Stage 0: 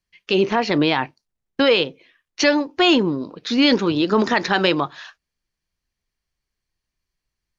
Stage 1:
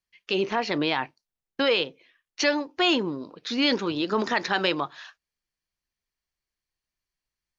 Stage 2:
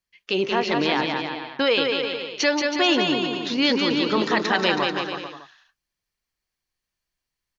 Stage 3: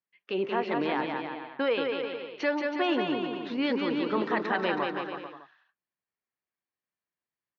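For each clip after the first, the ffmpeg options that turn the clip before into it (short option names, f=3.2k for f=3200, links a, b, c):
-af "lowshelf=f=330:g=-6.5,volume=-5dB"
-af "aecho=1:1:180|324|439.2|531.4|605.1:0.631|0.398|0.251|0.158|0.1,volume=2dB"
-af "highpass=170,lowpass=2k,volume=-5.5dB"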